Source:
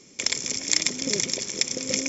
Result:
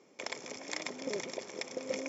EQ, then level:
resonant band-pass 760 Hz, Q 1.4
+1.0 dB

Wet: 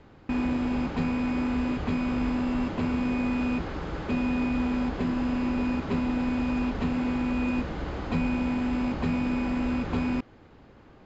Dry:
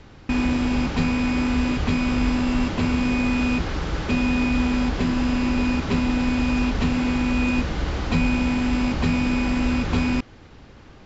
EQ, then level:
low-shelf EQ 140 Hz −8.5 dB
high-shelf EQ 2,100 Hz −12 dB
notch filter 5,700 Hz, Q 12
−2.5 dB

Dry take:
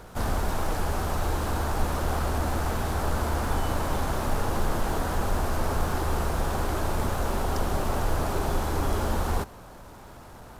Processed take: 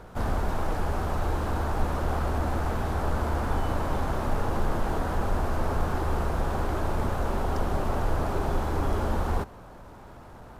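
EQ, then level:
high-shelf EQ 3,400 Hz −10.5 dB
0.0 dB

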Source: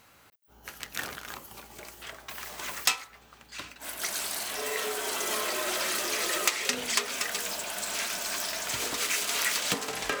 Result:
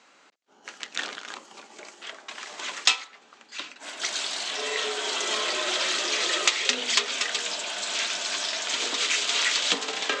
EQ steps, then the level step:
high-pass filter 230 Hz 24 dB per octave
elliptic low-pass filter 7,400 Hz, stop band 70 dB
dynamic equaliser 3,500 Hz, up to +7 dB, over −48 dBFS, Q 1.8
+2.5 dB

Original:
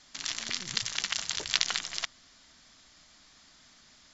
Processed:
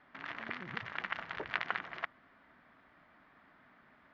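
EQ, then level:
high-pass filter 200 Hz 6 dB per octave
low-pass filter 1,900 Hz 24 dB per octave
+2.5 dB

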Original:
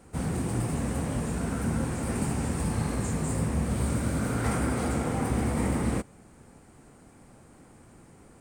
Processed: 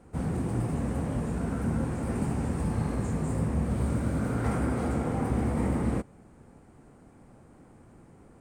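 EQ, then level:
high-shelf EQ 2,100 Hz −10.5 dB
0.0 dB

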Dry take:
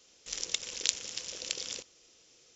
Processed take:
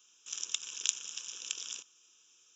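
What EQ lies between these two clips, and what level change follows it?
high-pass filter 1,000 Hz 6 dB per octave
phaser with its sweep stopped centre 3,000 Hz, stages 8
0.0 dB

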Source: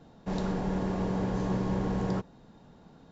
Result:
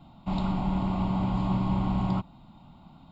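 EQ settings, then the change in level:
phaser with its sweep stopped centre 1,700 Hz, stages 6
+5.5 dB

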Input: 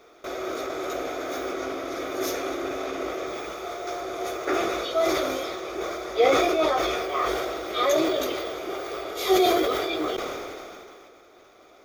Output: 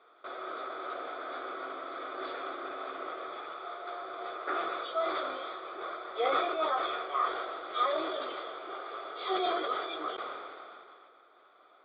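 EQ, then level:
high-pass filter 720 Hz 6 dB per octave
Chebyshev low-pass with heavy ripple 4,700 Hz, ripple 9 dB
high-frequency loss of the air 350 metres
+1.5 dB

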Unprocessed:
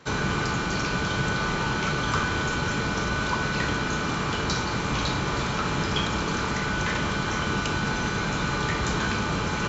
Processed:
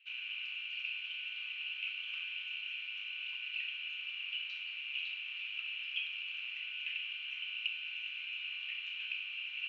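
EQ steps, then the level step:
flat-topped band-pass 2,700 Hz, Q 6.5
+3.0 dB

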